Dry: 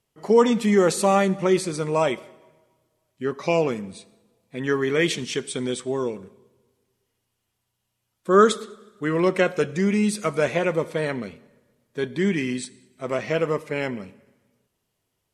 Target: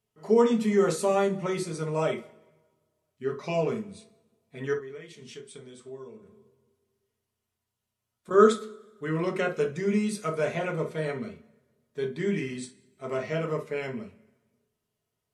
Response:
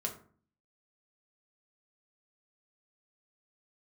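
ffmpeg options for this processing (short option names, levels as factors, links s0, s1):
-filter_complex "[0:a]asettb=1/sr,asplit=3[s0][s1][s2];[s0]atrim=end=4.734[s3];[s1]atrim=start=4.73:end=8.31,asetpts=PTS-STARTPTS,afade=t=in:d=0.004:c=qsin,afade=t=out:st=3.576:d=0.004:c=qsin,acompressor=threshold=0.0178:ratio=16[s4];[s2]atrim=start=8.306[s5];[s3][s4]acrossfade=d=0.004:c1=hsin:c2=qsin[s6];[s6][s5]acrossfade=d=0.004:c1=qsin:c2=hsin[s7];[1:a]atrim=start_sample=2205,atrim=end_sample=3528[s8];[s7][s8]afir=irnorm=-1:irlink=0,volume=0.398"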